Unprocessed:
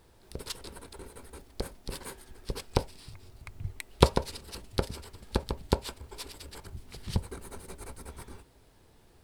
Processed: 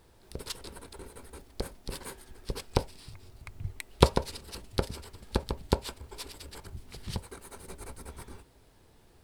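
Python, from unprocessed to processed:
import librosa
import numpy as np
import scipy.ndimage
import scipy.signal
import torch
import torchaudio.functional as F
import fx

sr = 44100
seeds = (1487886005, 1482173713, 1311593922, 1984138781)

y = fx.low_shelf(x, sr, hz=370.0, db=-8.0, at=(7.15, 7.6))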